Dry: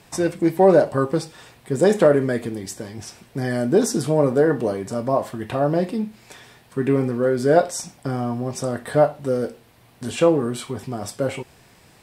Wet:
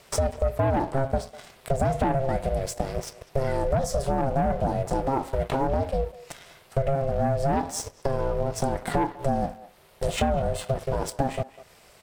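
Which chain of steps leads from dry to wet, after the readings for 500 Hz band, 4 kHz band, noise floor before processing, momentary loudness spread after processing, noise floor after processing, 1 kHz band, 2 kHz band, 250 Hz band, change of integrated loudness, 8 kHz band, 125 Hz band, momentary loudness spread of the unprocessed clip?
-7.5 dB, -3.5 dB, -53 dBFS, 8 LU, -55 dBFS, 0.0 dB, -6.5 dB, -8.5 dB, -6.0 dB, -4.0 dB, -1.0 dB, 15 LU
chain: bell 340 Hz +10 dB 1.3 oct; sample leveller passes 2; compressor 10:1, threshold -15 dBFS, peak gain reduction 14.5 dB; ring modulator 270 Hz; speakerphone echo 0.2 s, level -18 dB; mismatched tape noise reduction encoder only; gain -3.5 dB

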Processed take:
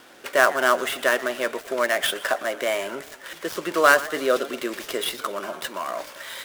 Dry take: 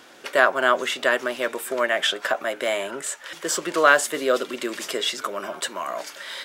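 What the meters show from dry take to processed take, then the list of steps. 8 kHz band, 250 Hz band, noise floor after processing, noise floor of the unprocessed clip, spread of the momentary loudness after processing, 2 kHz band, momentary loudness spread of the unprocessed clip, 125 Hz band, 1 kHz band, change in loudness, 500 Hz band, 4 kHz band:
-3.5 dB, 0.0 dB, -46 dBFS, -46 dBFS, 13 LU, -0.5 dB, 12 LU, +0.5 dB, 0.0 dB, 0.0 dB, 0.0 dB, -2.5 dB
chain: switching dead time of 0.06 ms; warbling echo 0.117 s, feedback 55%, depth 175 cents, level -17.5 dB

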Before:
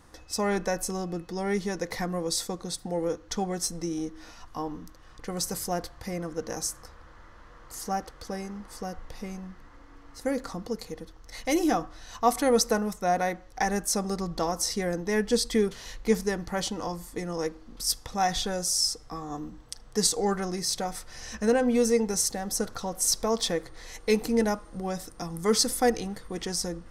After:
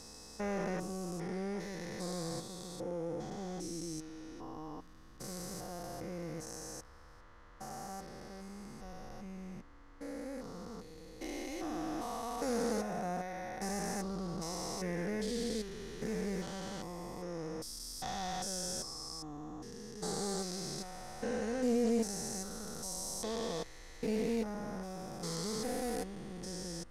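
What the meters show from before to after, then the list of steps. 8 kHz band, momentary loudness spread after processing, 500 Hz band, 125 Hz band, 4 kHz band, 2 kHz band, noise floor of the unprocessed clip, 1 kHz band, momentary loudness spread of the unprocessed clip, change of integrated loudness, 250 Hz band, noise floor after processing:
-12.5 dB, 13 LU, -10.5 dB, -7.0 dB, -12.5 dB, -11.5 dB, -51 dBFS, -11.5 dB, 14 LU, -11.0 dB, -8.5 dB, -55 dBFS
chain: stepped spectrum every 0.4 s; Doppler distortion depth 0.17 ms; gain -5.5 dB

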